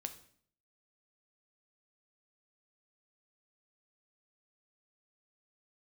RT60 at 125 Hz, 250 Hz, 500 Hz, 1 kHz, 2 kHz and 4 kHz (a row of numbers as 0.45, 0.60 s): 0.70, 0.70, 0.60, 0.55, 0.55, 0.50 s